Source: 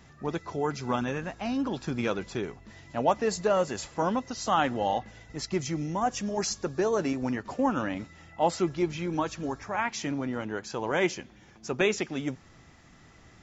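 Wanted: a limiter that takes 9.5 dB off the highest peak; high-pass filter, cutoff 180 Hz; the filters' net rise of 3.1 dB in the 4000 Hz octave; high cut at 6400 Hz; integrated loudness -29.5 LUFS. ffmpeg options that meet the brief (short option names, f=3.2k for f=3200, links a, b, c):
-af "highpass=180,lowpass=6.4k,equalizer=f=4k:t=o:g=5,volume=3dB,alimiter=limit=-17dB:level=0:latency=1"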